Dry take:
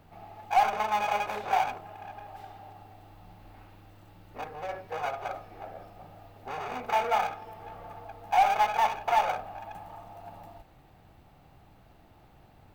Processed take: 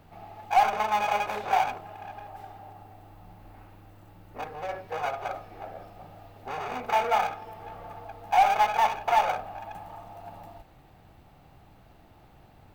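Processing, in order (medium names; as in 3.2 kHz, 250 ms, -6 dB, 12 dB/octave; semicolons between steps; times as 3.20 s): 2.28–4.40 s: peaking EQ 3.8 kHz -5 dB 1.6 oct; trim +2 dB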